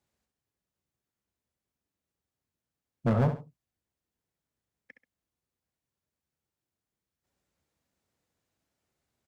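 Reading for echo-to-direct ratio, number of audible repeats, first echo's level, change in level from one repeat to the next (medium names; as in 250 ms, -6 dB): -9.0 dB, 2, -9.5 dB, -10.5 dB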